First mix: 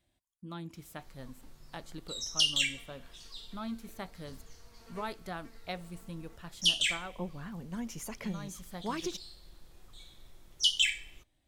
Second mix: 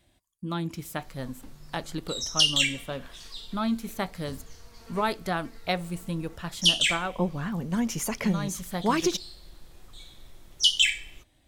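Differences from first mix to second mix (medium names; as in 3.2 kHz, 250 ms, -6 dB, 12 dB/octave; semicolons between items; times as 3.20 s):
speech +11.5 dB; background +5.5 dB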